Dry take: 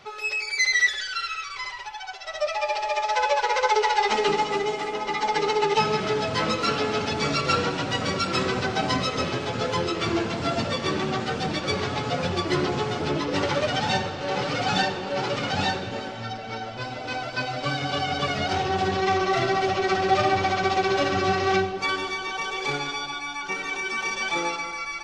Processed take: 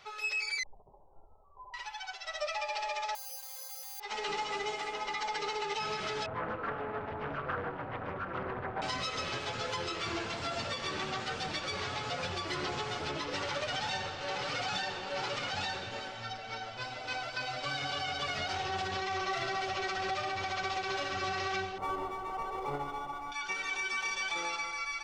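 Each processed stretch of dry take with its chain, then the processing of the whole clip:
0.63–1.74 hard clip -27.5 dBFS + steep low-pass 1000 Hz 96 dB/oct
3.15–4 robotiser 263 Hz + careless resampling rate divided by 8×, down filtered, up zero stuff
6.26–8.82 Bessel low-pass 1100 Hz, order 4 + Doppler distortion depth 0.42 ms
21.78–23.32 half-waves squared off + polynomial smoothing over 65 samples
whole clip: bell 220 Hz -11.5 dB 2.7 oct; compressor, threshold -24 dBFS; limiter -21.5 dBFS; gain -4 dB

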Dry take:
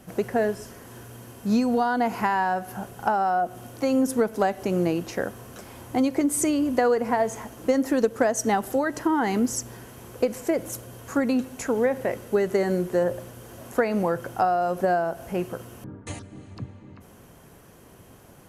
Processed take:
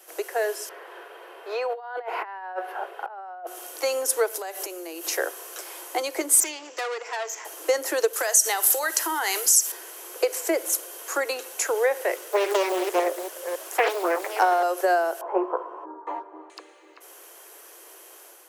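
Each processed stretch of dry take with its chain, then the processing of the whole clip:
0.69–3.47 HPF 390 Hz 24 dB/oct + negative-ratio compressor -30 dBFS, ratio -0.5 + air absorption 490 m
4.3–5.17 high shelf 6600 Hz +9 dB + compressor 16:1, threshold -30 dBFS
6.4–7.45 rippled Chebyshev low-pass 7500 Hz, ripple 6 dB + high shelf 3900 Hz +7 dB + tube stage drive 27 dB, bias 0.65
8.13–9.72 tilt +3.5 dB/oct + compressor 5:1, threshold -23 dBFS + flutter echo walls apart 9.7 m, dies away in 0.2 s
12.16–14.63 reverse delay 0.279 s, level -7 dB + Doppler distortion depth 0.96 ms
15.21–16.5 synth low-pass 990 Hz, resonance Q 6.3 + tilt -2 dB/oct + doubler 16 ms -7 dB
whole clip: steep high-pass 320 Hz 96 dB/oct; tilt +2.5 dB/oct; AGC gain up to 4.5 dB; gain -1.5 dB

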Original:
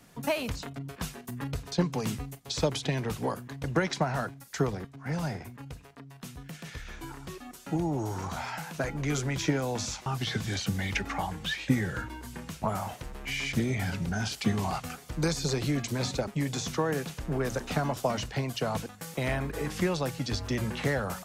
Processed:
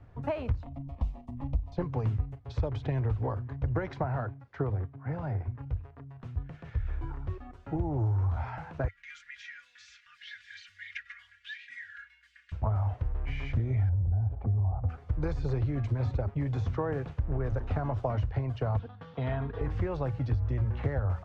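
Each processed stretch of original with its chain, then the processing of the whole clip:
0.63–1.77 low shelf 140 Hz +8.5 dB + fixed phaser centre 410 Hz, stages 6
4.04–5.48 HPF 120 Hz + air absorption 130 m
8.88–12.52 elliptic high-pass 1700 Hz, stop band 50 dB + comb 4.2 ms, depth 96%
13.89–14.89 synth low-pass 740 Hz, resonance Q 2.1 + low shelf 150 Hz +12 dB + compressor 3:1, threshold -33 dBFS
18.79–19.61 speaker cabinet 130–5100 Hz, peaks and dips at 130 Hz +5 dB, 320 Hz -6 dB, 550 Hz -7 dB, 2200 Hz -6 dB, 3400 Hz +9 dB + comb 4.3 ms, depth 50%
whole clip: Bessel low-pass 1100 Hz, order 2; resonant low shelf 130 Hz +11 dB, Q 3; compressor 6:1, threshold -25 dBFS

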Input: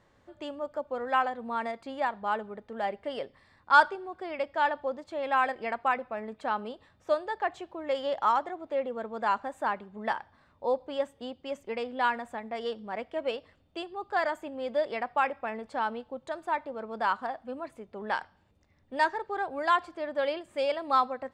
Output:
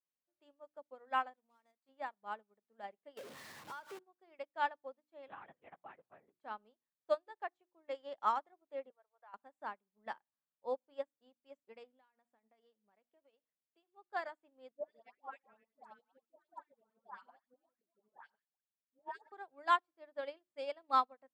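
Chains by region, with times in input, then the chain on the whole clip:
1.36–1.89 G.711 law mismatch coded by A + tone controls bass -1 dB, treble +12 dB + compressor 3:1, threshold -38 dBFS
3.17–3.99 zero-crossing step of -25.5 dBFS + compressor 8:1, threshold -27 dBFS
5.28–6.39 compressor 4:1, threshold -28 dBFS + LPC vocoder at 8 kHz whisper
8.9–9.34 inverse Chebyshev high-pass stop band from 170 Hz, stop band 60 dB + compressor 3:1, threshold -31 dBFS + air absorption 370 m
11.9–13.86 HPF 42 Hz + compressor 12:1, threshold -36 dBFS
14.71–19.32 reverse delay 0.152 s, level -11 dB + tremolo saw up 11 Hz, depth 95% + dispersion highs, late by 0.146 s, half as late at 1100 Hz
whole clip: HPF 130 Hz 24 dB/oct; notches 60/120/180/240/300/360 Hz; upward expander 2.5:1, over -45 dBFS; gain -4 dB

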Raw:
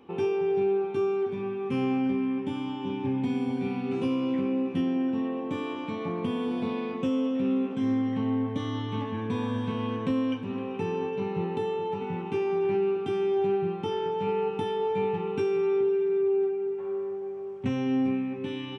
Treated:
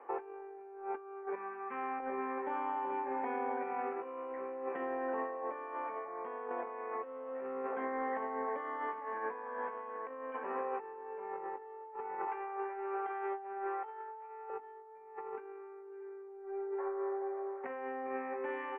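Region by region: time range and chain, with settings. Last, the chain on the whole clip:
1.35–2 LPF 2300 Hz 6 dB/oct + bell 500 Hz -15 dB 1.3 oct
12.27–14.5 HPF 590 Hz + split-band echo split 410 Hz, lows 0.29 s, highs 0.145 s, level -14 dB
whole clip: HPF 530 Hz 24 dB/oct; negative-ratio compressor -42 dBFS, ratio -0.5; elliptic low-pass 1900 Hz, stop band 60 dB; gain +3.5 dB

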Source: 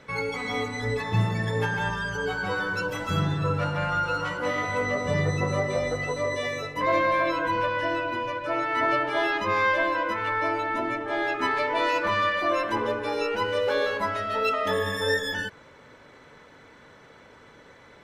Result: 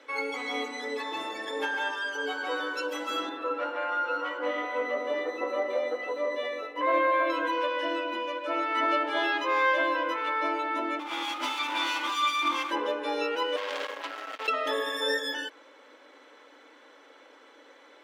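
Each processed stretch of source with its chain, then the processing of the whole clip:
3.29–7.3 median filter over 5 samples + tone controls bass -5 dB, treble -14 dB
10.99–12.71 minimum comb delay 0.86 ms + HPF 430 Hz 6 dB/oct + comb 3.4 ms, depth 60%
13.56–14.48 median filter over 15 samples + core saturation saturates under 2800 Hz
whole clip: elliptic high-pass 280 Hz, stop band 40 dB; bell 3200 Hz +4.5 dB 0.51 oct; comb 3.7 ms, depth 31%; gain -2.5 dB

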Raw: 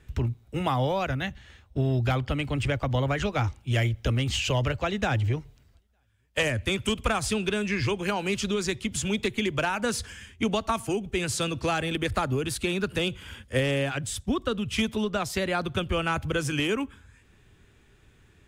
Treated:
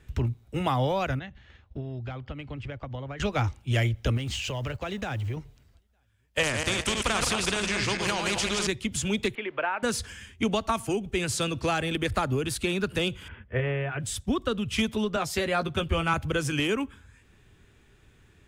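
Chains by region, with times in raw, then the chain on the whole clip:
1.19–3.2 transient shaper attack +6 dB, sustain -3 dB + compressor 2:1, threshold -42 dBFS + air absorption 140 m
4.17–5.37 G.711 law mismatch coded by A + compressor 5:1, threshold -28 dBFS
6.43–8.67 regenerating reverse delay 0.103 s, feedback 44%, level -5 dB + air absorption 61 m + spectral compressor 2:1
9.35–9.83 switching spikes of -31.5 dBFS + LPF 3400 Hz 24 dB/oct + three-band isolator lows -22 dB, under 370 Hz, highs -19 dB, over 2600 Hz
13.28–14 LPF 2300 Hz 24 dB/oct + notch comb 270 Hz
15.16–16.14 doubler 13 ms -7 dB + three-band expander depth 40%
whole clip: dry

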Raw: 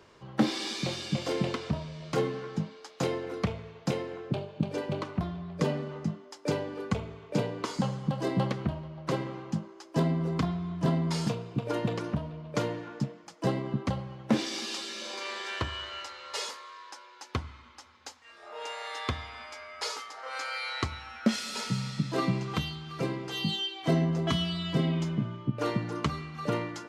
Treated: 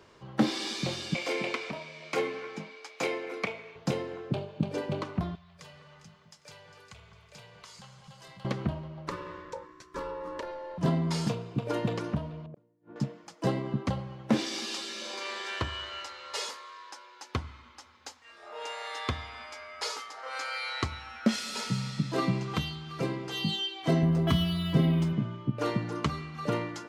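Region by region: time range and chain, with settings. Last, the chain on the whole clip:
1.14–3.76 HPF 340 Hz + bell 2300 Hz +14 dB 0.25 oct
5.35–8.45 passive tone stack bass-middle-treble 10-0-10 + compressor 2:1, threshold -52 dBFS + echo with dull and thin repeats by turns 0.202 s, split 1900 Hz, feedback 60%, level -7 dB
9.09–10.78 ring modulator 700 Hz + compressor 2:1, threshold -35 dBFS + Butterworth band-stop 820 Hz, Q 6.1
12.46–12.96 band-pass 210 Hz, Q 0.67 + flipped gate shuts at -32 dBFS, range -34 dB
24.03–25.13 low shelf 110 Hz +12 dB + decimation joined by straight lines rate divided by 3×
whole clip: dry

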